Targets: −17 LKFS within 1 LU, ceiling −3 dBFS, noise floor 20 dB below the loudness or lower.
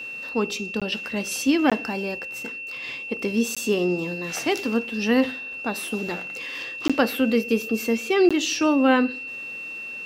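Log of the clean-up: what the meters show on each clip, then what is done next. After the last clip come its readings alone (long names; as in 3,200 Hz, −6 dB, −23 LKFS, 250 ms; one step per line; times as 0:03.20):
number of dropouts 5; longest dropout 16 ms; interfering tone 2,700 Hz; level of the tone −32 dBFS; integrated loudness −24.0 LKFS; sample peak −6.0 dBFS; target loudness −17.0 LKFS
→ repair the gap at 0:00.80/0:01.70/0:03.55/0:06.88/0:08.29, 16 ms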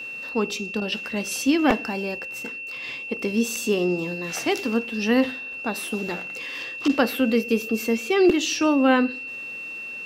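number of dropouts 0; interfering tone 2,700 Hz; level of the tone −32 dBFS
→ notch filter 2,700 Hz, Q 30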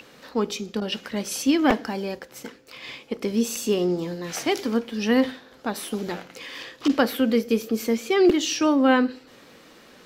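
interfering tone none found; integrated loudness −24.0 LKFS; sample peak −6.0 dBFS; target loudness −17.0 LKFS
→ level +7 dB
brickwall limiter −3 dBFS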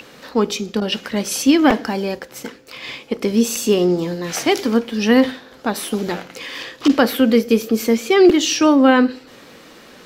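integrated loudness −17.5 LKFS; sample peak −3.0 dBFS; background noise floor −44 dBFS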